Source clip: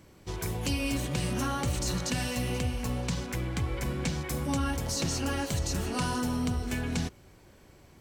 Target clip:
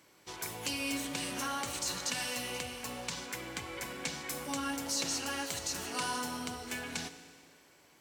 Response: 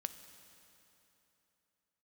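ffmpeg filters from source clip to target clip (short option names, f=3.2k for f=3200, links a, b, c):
-filter_complex "[0:a]highpass=f=990:p=1[a];[1:a]atrim=start_sample=2205,asetrate=70560,aresample=44100[b];[a][b]afir=irnorm=-1:irlink=0,volume=6dB"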